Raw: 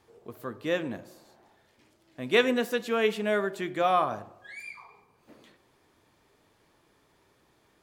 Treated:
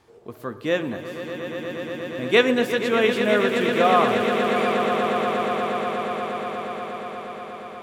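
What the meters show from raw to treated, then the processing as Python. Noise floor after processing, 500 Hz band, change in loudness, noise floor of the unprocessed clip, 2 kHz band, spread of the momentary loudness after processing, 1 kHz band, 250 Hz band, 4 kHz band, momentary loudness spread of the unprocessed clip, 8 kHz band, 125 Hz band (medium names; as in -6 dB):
-44 dBFS, +8.5 dB, +5.5 dB, -67 dBFS, +8.5 dB, 15 LU, +9.0 dB, +9.0 dB, +8.0 dB, 18 LU, +7.0 dB, +9.0 dB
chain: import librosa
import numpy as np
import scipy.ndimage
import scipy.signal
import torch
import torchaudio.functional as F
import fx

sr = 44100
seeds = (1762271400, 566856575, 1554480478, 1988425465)

p1 = fx.high_shelf(x, sr, hz=12000.0, db=-8.5)
p2 = p1 + fx.echo_swell(p1, sr, ms=119, loudest=8, wet_db=-11.0, dry=0)
y = p2 * 10.0 ** (5.5 / 20.0)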